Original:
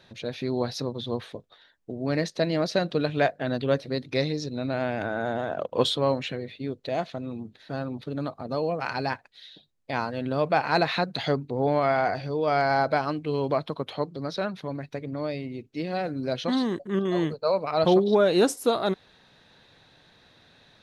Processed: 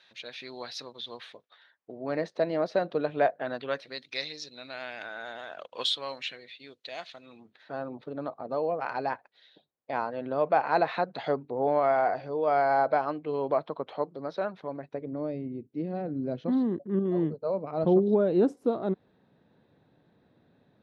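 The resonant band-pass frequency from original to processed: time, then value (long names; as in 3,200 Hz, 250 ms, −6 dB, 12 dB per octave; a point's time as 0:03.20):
resonant band-pass, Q 0.81
0:01.22 2,700 Hz
0:02.22 720 Hz
0:03.30 720 Hz
0:04.07 3,400 Hz
0:07.21 3,400 Hz
0:07.84 710 Hz
0:14.70 710 Hz
0:15.46 240 Hz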